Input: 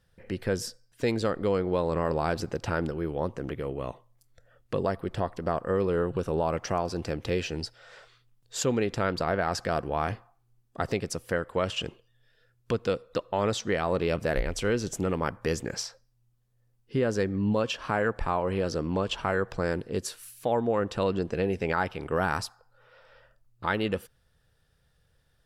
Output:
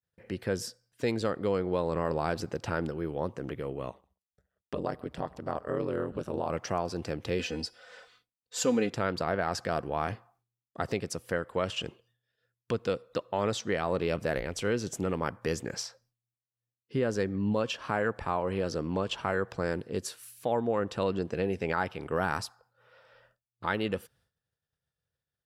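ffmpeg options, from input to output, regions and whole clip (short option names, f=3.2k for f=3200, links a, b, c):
-filter_complex "[0:a]asettb=1/sr,asplit=3[a][b][c];[a]atrim=end=3.894[d];[b]atrim=start=3.89:end=6.5,asetpts=PTS-STARTPTS,afade=t=in:d=0.004:c=qsin,afade=t=out:st=2.606:d=0.004:c=qsin,agate=range=-33dB:threshold=-56dB:ratio=3:release=100:detection=peak,aecho=1:1:133|266:0.0708|0.012,atrim=end_sample=115101,aeval=exprs='val(0)*sin(2*PI*66*n/s)':c=same[e];[c]atrim=start=6.496[f];[d][e]acrossfade=d=0.004:c1=hsin:c2=qsin[g];[g][f]acrossfade=d=0.004:c1=qsin:c2=hsin,asettb=1/sr,asplit=3[h][i][j];[h]atrim=end=7.394[k];[i]atrim=start=7.39:end=8.9,asetpts=PTS-STARTPTS,afade=t=in:d=0.004:c=qsin,afade=t=out:st=1.506:d=0.004:c=qsin,aecho=1:1:4:0.75,atrim=end_sample=66591,bandreject=f=363.7:t=h:w=4,bandreject=f=727.4:t=h:w=4,bandreject=f=1.0911k:t=h:w=4,bandreject=f=1.4548k:t=h:w=4,bandreject=f=1.8185k:t=h:w=4,bandreject=f=2.1822k:t=h:w=4,bandreject=f=2.5459k:t=h:w=4,bandreject=f=2.9096k:t=h:w=4,bandreject=f=3.2733k:t=h:w=4,bandreject=f=3.637k:t=h:w=4,bandreject=f=4.0007k:t=h:w=4,bandreject=f=4.3644k:t=h:w=4,bandreject=f=4.7281k:t=h:w=4,bandreject=f=5.0918k:t=h:w=4,bandreject=f=5.4555k:t=h:w=4,bandreject=f=5.8192k:t=h:w=4,bandreject=f=6.1829k:t=h:w=4,bandreject=f=6.5466k:t=h:w=4,bandreject=f=6.9103k:t=h:w=4,bandreject=f=7.274k:t=h:w=4,bandreject=f=7.6377k:t=h:w=4,bandreject=f=8.0014k:t=h:w=4,bandreject=f=8.3651k:t=h:w=4,bandreject=f=8.7288k:t=h:w=4,bandreject=f=9.0925k:t=h:w=4,bandreject=f=9.4562k:t=h:w=4,bandreject=f=9.8199k:t=h:w=4,bandreject=f=10.1836k:t=h:w=4,bandreject=f=10.5473k:t=h:w=4,bandreject=f=10.911k:t=h:w=4,bandreject=f=11.2747k:t=h:w=4,bandreject=f=11.6384k:t=h:w=4,bandreject=f=12.0021k:t=h:w=4,bandreject=f=12.3658k:t=h:w=4,bandreject=f=12.7295k:t=h:w=4,bandreject=f=13.0932k:t=h:w=4,bandreject=f=13.4569k:t=h:w=4,bandreject=f=13.8206k:t=h:w=4[l];[j]atrim=start=8.896[m];[k][l]acrossfade=d=0.004:c1=hsin:c2=qsin[n];[n][m]acrossfade=d=0.004:c1=qsin:c2=hsin,highpass=78,agate=range=-33dB:threshold=-59dB:ratio=3:detection=peak,volume=-2.5dB"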